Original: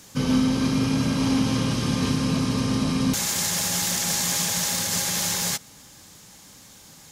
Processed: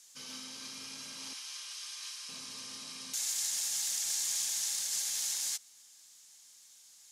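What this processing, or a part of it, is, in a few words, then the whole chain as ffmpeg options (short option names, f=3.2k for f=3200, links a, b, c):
piezo pickup straight into a mixer: -filter_complex "[0:a]asettb=1/sr,asplit=3[a][b][c];[a]atrim=end=1.334[d];[b]atrim=start=1.33:end=2.29,asetpts=PTS-STARTPTS,afade=t=in:d=0.004:c=qsin,afade=t=out:st=0.956:d=0.004:c=qsin,highpass=1.1k[e];[c]atrim=start=2.286[f];[d][e]acrossfade=d=0.004:c1=hsin:c2=qsin[g];[g][f]acrossfade=d=0.004:c1=qsin:c2=hsin,lowpass=8.8k,aderivative,volume=-5.5dB"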